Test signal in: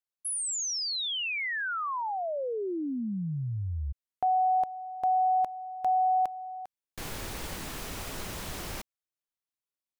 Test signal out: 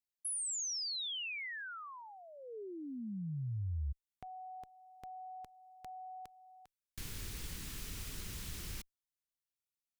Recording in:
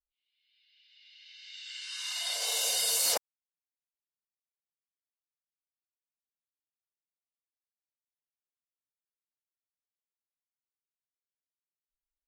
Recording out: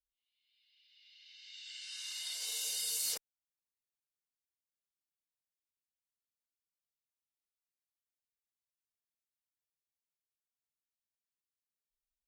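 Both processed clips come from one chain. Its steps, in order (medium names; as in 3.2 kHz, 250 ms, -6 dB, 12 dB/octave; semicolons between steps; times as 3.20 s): dynamic bell 440 Hz, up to +6 dB, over -50 dBFS, Q 2.8; in parallel at +1 dB: compression, threshold -39 dBFS; on the sum: amplifier tone stack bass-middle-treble 6-0-2; trim +5 dB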